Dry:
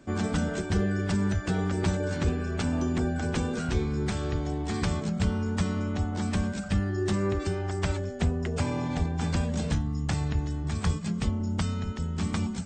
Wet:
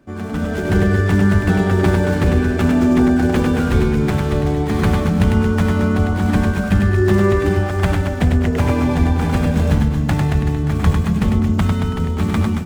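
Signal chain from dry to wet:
running median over 9 samples
automatic gain control gain up to 11 dB
reverse bouncing-ball delay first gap 100 ms, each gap 1.25×, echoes 5

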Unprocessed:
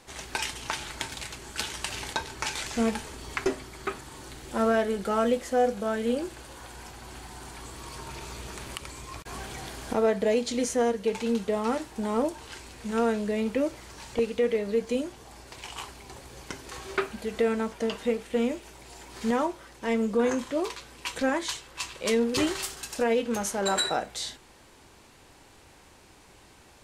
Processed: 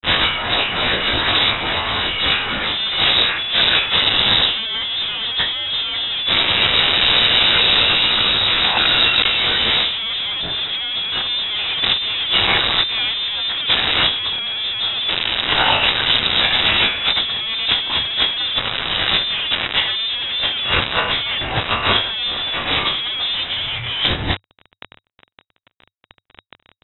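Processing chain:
peak hold with a rise ahead of every peak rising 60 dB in 0.35 s
fuzz pedal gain 49 dB, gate −43 dBFS
brickwall limiter −16 dBFS, peak gain reduction 5.5 dB
compressor whose output falls as the input rises −23 dBFS, ratio −0.5
0:03.85–0:06.12: notch filter 1,400 Hz, Q 5.9
voice inversion scrambler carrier 3,800 Hz
parametric band 98 Hz +4.5 dB 0.41 octaves
level +6.5 dB

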